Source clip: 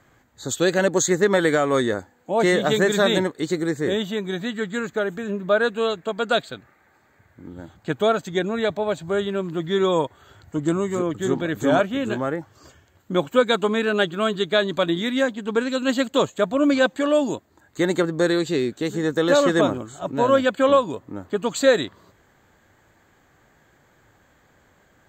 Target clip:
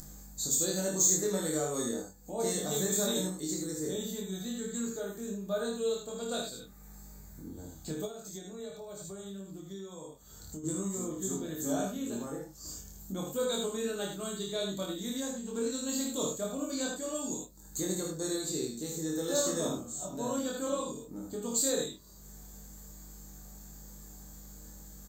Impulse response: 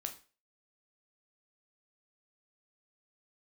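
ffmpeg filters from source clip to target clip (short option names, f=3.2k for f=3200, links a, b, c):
-filter_complex "[0:a]aeval=exprs='val(0)+0.00398*(sin(2*PI*50*n/s)+sin(2*PI*2*50*n/s)/2+sin(2*PI*3*50*n/s)/3+sin(2*PI*4*50*n/s)/4+sin(2*PI*5*50*n/s)/5)':c=same,aecho=1:1:55|77:0.501|0.473,acompressor=mode=upward:threshold=-21dB:ratio=2.5,equalizer=f=1.8k:t=o:w=2:g=-10.5,asplit=2[a][b];[b]adelay=26,volume=-2.5dB[c];[a][c]amix=inputs=2:normalize=0,asettb=1/sr,asplit=3[d][e][f];[d]atrim=end=8.054[g];[e]atrim=start=8.05:end=10.64,asetpts=PTS-STARTPTS,afade=t=in:d=0.004:c=qsin,afade=t=out:st=2.586:d=0.004:c=qsin,acompressor=threshold=-26dB:ratio=10[h];[f]atrim=start=10.636[i];[g][h]acrossfade=d=0.004:c1=hsin:c2=qsin[j];[j][i]acrossfade=d=0.004:c1=qsin:c2=hsin,aexciter=amount=3.3:drive=9.6:freq=4.3k[k];[1:a]atrim=start_sample=2205,asetrate=83790,aresample=44100[l];[k][l]afir=irnorm=-1:irlink=0,volume=-8dB"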